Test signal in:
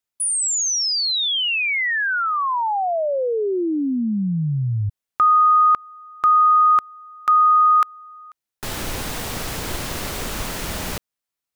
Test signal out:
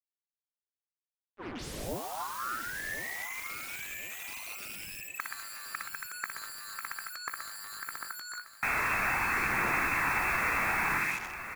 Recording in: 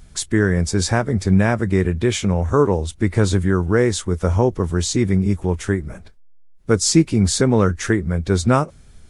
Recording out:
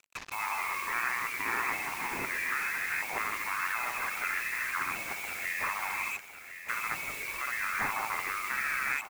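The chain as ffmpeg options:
ffmpeg -i in.wav -filter_complex "[0:a]highpass=frequency=190:poles=1,lowpass=frequency=2300:width_type=q:width=0.5098,lowpass=frequency=2300:width_type=q:width=0.6013,lowpass=frequency=2300:width_type=q:width=0.9,lowpass=frequency=2300:width_type=q:width=2.563,afreqshift=-2700,equalizer=frequency=570:width=1.6:gain=-12.5,asplit=2[link_01][link_02];[link_02]aecho=0:1:60|126|198.6|278.5|366.3:0.631|0.398|0.251|0.158|0.1[link_03];[link_01][link_03]amix=inputs=2:normalize=0,aphaser=in_gain=1:out_gain=1:delay=1.9:decay=0.35:speed=0.62:type=triangular,acompressor=threshold=-25dB:ratio=16:attack=37:release=100:knee=1:detection=rms,alimiter=limit=-18.5dB:level=0:latency=1:release=77,acontrast=64,acrusher=bits=5:mix=0:aa=0.5,afftfilt=real='re*lt(hypot(re,im),0.178)':imag='im*lt(hypot(re,im),0.178)':win_size=1024:overlap=0.75,asplit=2[link_04][link_05];[link_05]aecho=0:1:1057|2114|3171|4228:0.266|0.106|0.0426|0.017[link_06];[link_04][link_06]amix=inputs=2:normalize=0" out.wav

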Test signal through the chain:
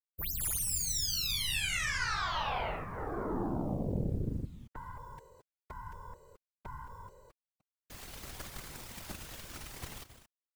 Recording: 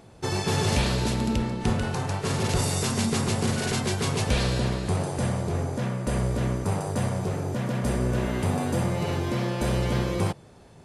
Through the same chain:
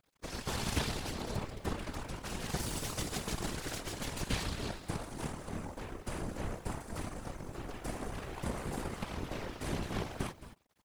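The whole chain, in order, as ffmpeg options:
ffmpeg -i in.wav -filter_complex "[0:a]equalizer=frequency=510:width=4.7:gain=-7.5,asplit=2[link_01][link_02];[link_02]aecho=0:1:219:0.398[link_03];[link_01][link_03]amix=inputs=2:normalize=0,aeval=exprs='0.266*(cos(1*acos(clip(val(0)/0.266,-1,1)))-cos(1*PI/2))+0.0668*(cos(3*acos(clip(val(0)/0.266,-1,1)))-cos(3*PI/2))+0.00422*(cos(6*acos(clip(val(0)/0.266,-1,1)))-cos(6*PI/2))+0.015*(cos(7*acos(clip(val(0)/0.266,-1,1)))-cos(7*PI/2))+0.0211*(cos(8*acos(clip(val(0)/0.266,-1,1)))-cos(8*PI/2))':channel_layout=same,acrusher=bits=9:mix=0:aa=0.000001,afftfilt=real='hypot(re,im)*cos(2*PI*random(0))':imag='hypot(re,im)*sin(2*PI*random(1))':win_size=512:overlap=0.75" out.wav

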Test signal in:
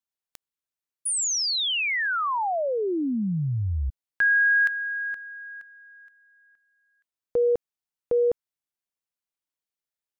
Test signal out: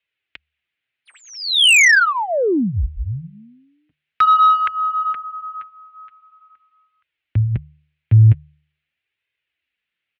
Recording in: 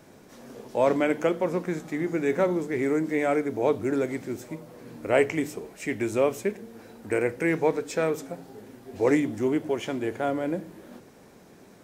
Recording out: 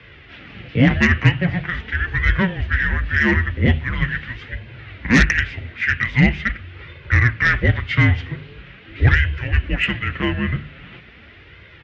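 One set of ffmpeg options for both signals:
ffmpeg -i in.wav -filter_complex "[0:a]acrossover=split=440[link_01][link_02];[link_01]aecho=1:1:2.5:0.35[link_03];[link_02]aexciter=amount=5.6:drive=8.7:freq=2100[link_04];[link_03][link_04]amix=inputs=2:normalize=0,highpass=frequency=310:width_type=q:width=0.5412,highpass=frequency=310:width_type=q:width=1.307,lowpass=frequency=3100:width_type=q:width=0.5176,lowpass=frequency=3100:width_type=q:width=0.7071,lowpass=frequency=3100:width_type=q:width=1.932,afreqshift=-370,flanger=delay=1.9:depth=6.5:regen=-26:speed=0.43:shape=sinusoidal,bandreject=frequency=74.83:width_type=h:width=4,bandreject=frequency=149.66:width_type=h:width=4,aeval=exprs='0.501*sin(PI/2*2.24*val(0)/0.501)':channel_layout=same,highpass=frequency=53:width=0.5412,highpass=frequency=53:width=1.3066,equalizer=frequency=90:width=0.31:gain=6,volume=-2dB" out.wav

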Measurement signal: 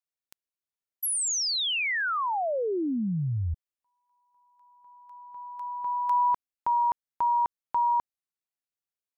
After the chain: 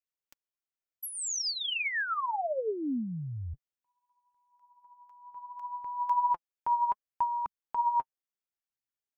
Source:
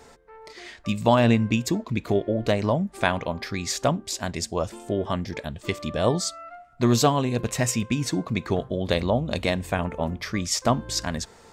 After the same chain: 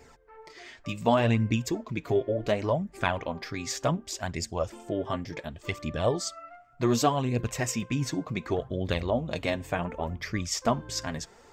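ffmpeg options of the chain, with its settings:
ffmpeg -i in.wav -af "equalizer=frequency=200:width_type=o:width=0.33:gain=-5,equalizer=frequency=4000:width_type=o:width=0.33:gain=-5,equalizer=frequency=10000:width_type=o:width=0.33:gain=-11,flanger=delay=0.4:depth=7.3:regen=31:speed=0.68:shape=sinusoidal" out.wav

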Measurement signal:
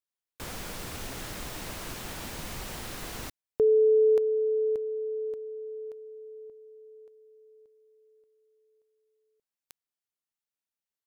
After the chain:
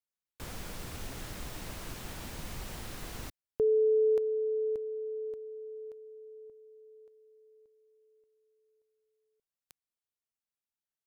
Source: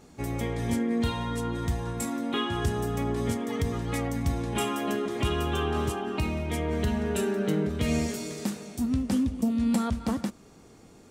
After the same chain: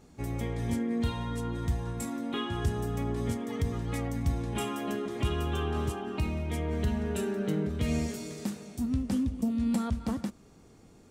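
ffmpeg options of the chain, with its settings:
ffmpeg -i in.wav -af "lowshelf=frequency=180:gain=6,volume=-5.5dB" out.wav

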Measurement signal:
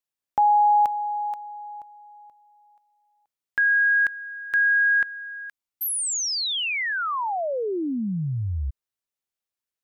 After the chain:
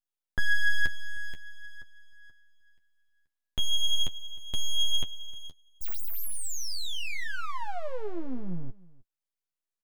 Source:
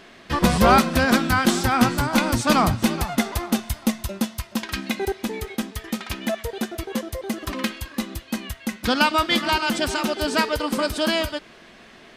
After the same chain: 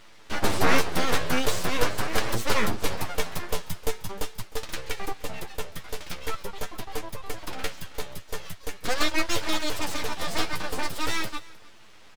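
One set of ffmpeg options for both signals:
ffmpeg -i in.wav -af "aeval=exprs='abs(val(0))':channel_layout=same,flanger=delay=9:depth=2.9:regen=25:speed=0.43:shape=sinusoidal,aecho=1:1:308:0.0794" out.wav

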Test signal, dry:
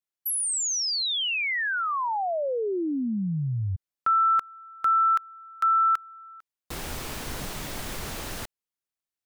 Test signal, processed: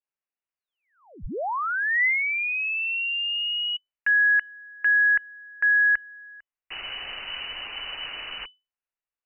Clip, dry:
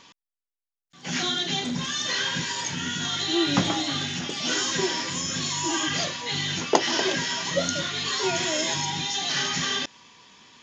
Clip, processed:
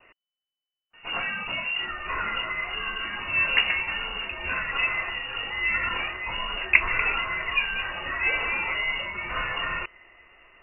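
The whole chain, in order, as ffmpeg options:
ffmpeg -i in.wav -af "adynamicequalizer=threshold=0.00794:dfrequency=1000:dqfactor=2.9:tfrequency=1000:tqfactor=2.9:attack=5:release=100:ratio=0.375:range=3.5:mode=boostabove:tftype=bell,lowpass=frequency=2600:width_type=q:width=0.5098,lowpass=frequency=2600:width_type=q:width=0.6013,lowpass=frequency=2600:width_type=q:width=0.9,lowpass=frequency=2600:width_type=q:width=2.563,afreqshift=-3000,asubboost=boost=4.5:cutoff=65" out.wav

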